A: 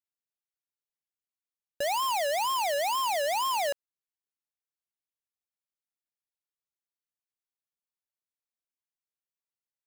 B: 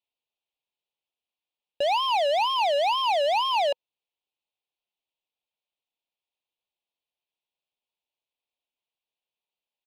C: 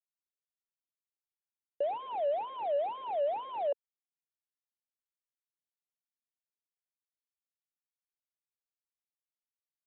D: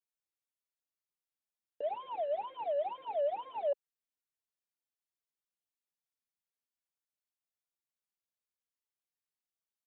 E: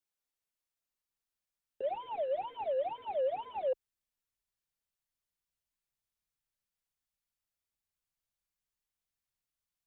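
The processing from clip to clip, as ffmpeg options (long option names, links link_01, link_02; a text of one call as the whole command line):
ffmpeg -i in.wav -filter_complex "[0:a]firequalizer=gain_entry='entry(170,0);entry(500,9);entry(920,10);entry(1500,-13);entry(2500,12);entry(3600,11);entry(6900,-18)':delay=0.05:min_phase=1,asplit=2[link_01][link_02];[link_02]volume=27.5dB,asoftclip=hard,volume=-27.5dB,volume=-3.5dB[link_03];[link_01][link_03]amix=inputs=2:normalize=0,volume=-5.5dB" out.wav
ffmpeg -i in.wav -af "aresample=8000,acrusher=bits=4:mix=0:aa=0.5,aresample=44100,bandpass=frequency=460:width_type=q:width=2.8:csg=0,volume=-1.5dB" out.wav
ffmpeg -i in.wav -filter_complex "[0:a]asplit=2[link_01][link_02];[link_02]adelay=3.9,afreqshift=-2.3[link_03];[link_01][link_03]amix=inputs=2:normalize=1" out.wav
ffmpeg -i in.wav -af "asubboost=boost=4.5:cutoff=170,afreqshift=-49,volume=2dB" out.wav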